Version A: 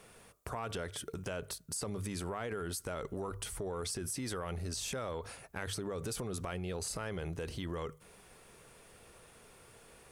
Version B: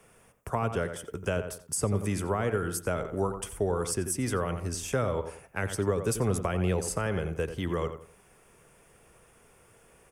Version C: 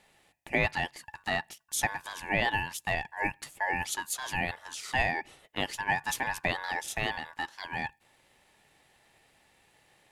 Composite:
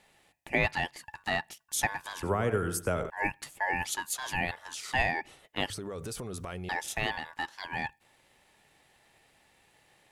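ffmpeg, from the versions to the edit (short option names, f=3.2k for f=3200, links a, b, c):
-filter_complex "[2:a]asplit=3[a][b][c];[a]atrim=end=2.232[d];[1:a]atrim=start=2.228:end=3.102[e];[b]atrim=start=3.098:end=5.702[f];[0:a]atrim=start=5.698:end=6.692[g];[c]atrim=start=6.688[h];[d][e]acrossfade=d=0.004:c1=hsin:c2=hsin[i];[i][f]acrossfade=d=0.004:c1=hsin:c2=hsin[j];[j][g]acrossfade=d=0.004:c1=hsin:c2=hsin[k];[k][h]acrossfade=d=0.004:c1=hsin:c2=hsin"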